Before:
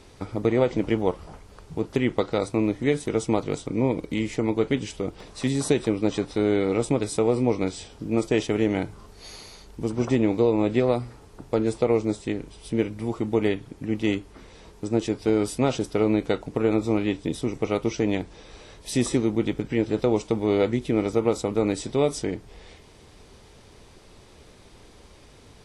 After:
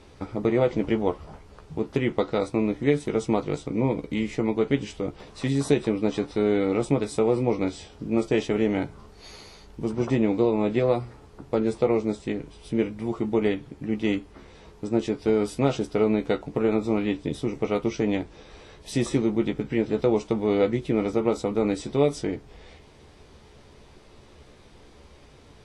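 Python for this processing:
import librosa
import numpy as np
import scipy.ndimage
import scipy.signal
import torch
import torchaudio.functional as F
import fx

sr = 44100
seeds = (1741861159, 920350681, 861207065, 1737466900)

y = fx.high_shelf(x, sr, hz=6600.0, db=-10.0)
y = fx.doubler(y, sr, ms=14.0, db=-7)
y = y * librosa.db_to_amplitude(-1.0)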